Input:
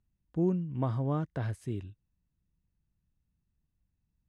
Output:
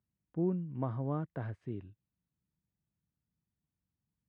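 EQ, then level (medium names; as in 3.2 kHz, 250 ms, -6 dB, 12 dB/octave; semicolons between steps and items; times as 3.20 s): band-pass 110–2000 Hz; -3.5 dB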